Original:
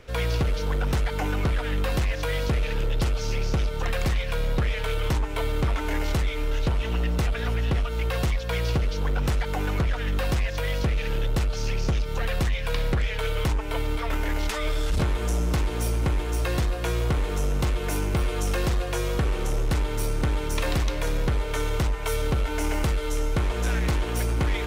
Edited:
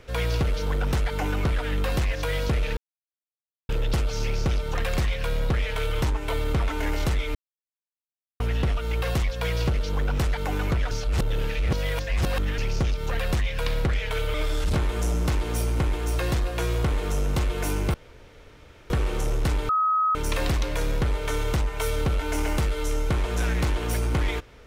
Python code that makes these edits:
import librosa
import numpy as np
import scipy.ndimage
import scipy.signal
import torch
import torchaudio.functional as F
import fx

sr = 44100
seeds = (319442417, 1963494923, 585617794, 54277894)

y = fx.edit(x, sr, fx.insert_silence(at_s=2.77, length_s=0.92),
    fx.silence(start_s=6.43, length_s=1.05),
    fx.reverse_span(start_s=9.99, length_s=1.67),
    fx.cut(start_s=13.42, length_s=1.18),
    fx.room_tone_fill(start_s=18.2, length_s=0.96),
    fx.bleep(start_s=19.95, length_s=0.46, hz=1270.0, db=-19.0), tone=tone)